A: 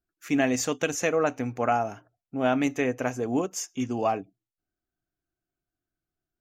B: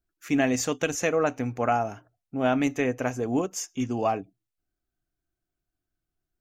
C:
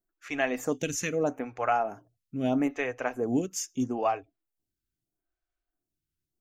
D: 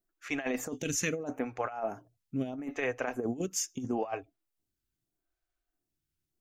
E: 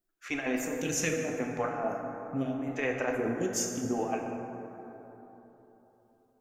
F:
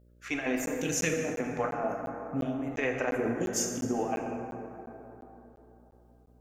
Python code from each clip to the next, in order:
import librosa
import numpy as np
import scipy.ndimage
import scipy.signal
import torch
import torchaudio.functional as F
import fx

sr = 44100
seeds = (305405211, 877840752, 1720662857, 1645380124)

y1 = fx.low_shelf(x, sr, hz=70.0, db=9.5)
y2 = fx.stagger_phaser(y1, sr, hz=0.78)
y3 = fx.over_compress(y2, sr, threshold_db=-30.0, ratio=-0.5)
y3 = F.gain(torch.from_numpy(y3), -2.0).numpy()
y4 = fx.rev_plate(y3, sr, seeds[0], rt60_s=3.7, hf_ratio=0.35, predelay_ms=0, drr_db=1.0)
y5 = fx.dmg_buzz(y4, sr, base_hz=60.0, harmonics=10, level_db=-61.0, tilt_db=-6, odd_only=False)
y5 = fx.buffer_crackle(y5, sr, first_s=0.66, period_s=0.35, block=512, kind='zero')
y5 = fx.end_taper(y5, sr, db_per_s=140.0)
y5 = F.gain(torch.from_numpy(y5), 1.0).numpy()